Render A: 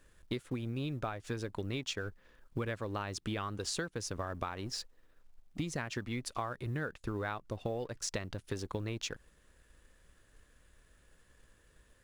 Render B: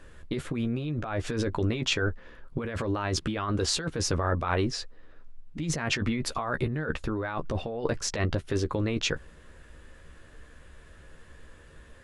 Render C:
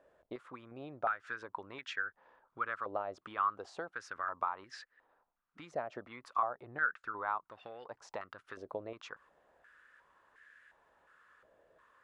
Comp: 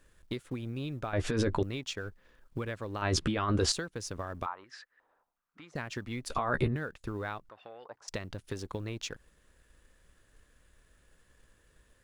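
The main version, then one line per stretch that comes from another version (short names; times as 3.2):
A
1.13–1.63 from B
3.02–3.72 from B
4.46–5.75 from C
6.3–6.76 from B
7.49–8.08 from C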